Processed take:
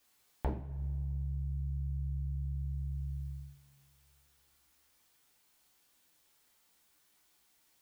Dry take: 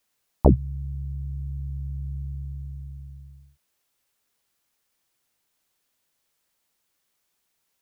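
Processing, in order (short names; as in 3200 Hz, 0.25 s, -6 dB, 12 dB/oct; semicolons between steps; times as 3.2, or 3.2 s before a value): compressor 6:1, threshold -39 dBFS, peak gain reduction 26 dB; two-slope reverb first 0.39 s, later 2.2 s, from -18 dB, DRR -0.5 dB; gain +1 dB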